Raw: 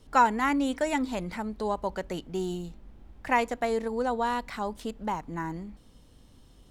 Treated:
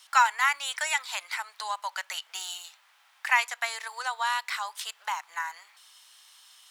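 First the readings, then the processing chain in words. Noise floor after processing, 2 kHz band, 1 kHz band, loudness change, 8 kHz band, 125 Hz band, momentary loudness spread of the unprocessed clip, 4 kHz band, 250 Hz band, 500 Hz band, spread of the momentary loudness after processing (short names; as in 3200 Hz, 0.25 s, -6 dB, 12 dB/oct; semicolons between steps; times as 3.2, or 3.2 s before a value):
-62 dBFS, +6.5 dB, -0.5 dB, +0.5 dB, +10.0 dB, under -40 dB, 11 LU, +9.5 dB, under -40 dB, -17.0 dB, 13 LU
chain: Bessel high-pass 1600 Hz, order 6; in parallel at -0.5 dB: compressor, threshold -46 dBFS, peak gain reduction 20 dB; on the sum: gain +7.5 dB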